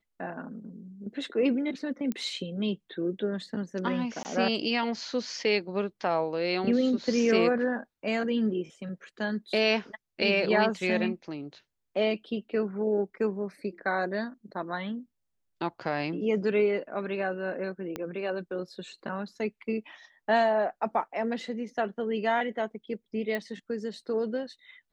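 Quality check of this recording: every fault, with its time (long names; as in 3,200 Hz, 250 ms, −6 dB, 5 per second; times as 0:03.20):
0:02.12: click −19 dBFS
0:04.23–0:04.25: drop-out 19 ms
0:17.96: click −19 dBFS
0:23.35: click −19 dBFS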